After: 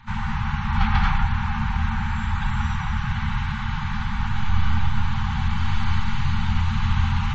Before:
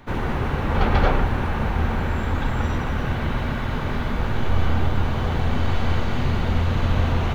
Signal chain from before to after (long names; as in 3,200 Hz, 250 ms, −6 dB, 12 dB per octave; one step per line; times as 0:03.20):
brick-wall band-stop 230–770 Hz
0:01.76–0:03.11: upward compression, threshold −25 dBFS
on a send: echo with a time of its own for lows and highs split 320 Hz, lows 216 ms, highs 119 ms, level −15 dB
on the sum: MP3 32 kbit/s 32,000 Hz